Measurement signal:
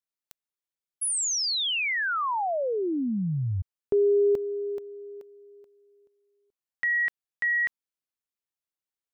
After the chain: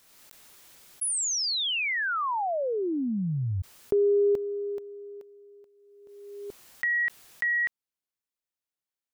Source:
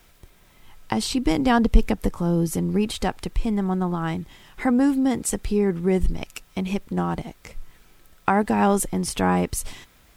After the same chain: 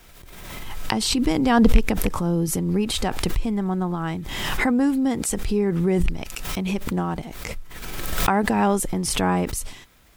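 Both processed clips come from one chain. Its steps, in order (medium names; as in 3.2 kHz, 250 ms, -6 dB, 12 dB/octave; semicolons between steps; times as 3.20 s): rattle on loud lows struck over -16 dBFS, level -12 dBFS; swell ahead of each attack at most 32 dB/s; trim -1 dB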